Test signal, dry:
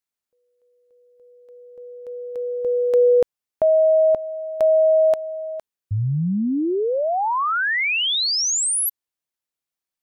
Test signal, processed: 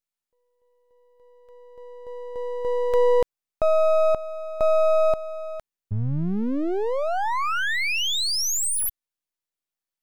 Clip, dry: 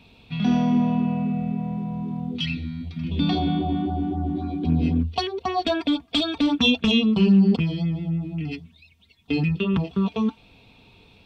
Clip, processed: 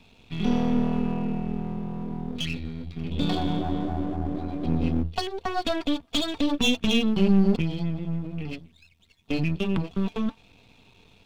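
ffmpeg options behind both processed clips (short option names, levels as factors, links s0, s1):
-af "aeval=exprs='if(lt(val(0),0),0.251*val(0),val(0))':c=same"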